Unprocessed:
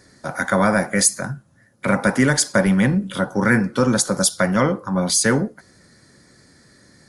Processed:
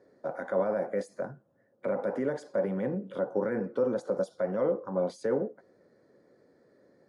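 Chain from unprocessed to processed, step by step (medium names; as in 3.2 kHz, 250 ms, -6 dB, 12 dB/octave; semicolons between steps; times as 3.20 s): peak limiter -12.5 dBFS, peak gain reduction 9 dB; band-pass filter 490 Hz, Q 2.5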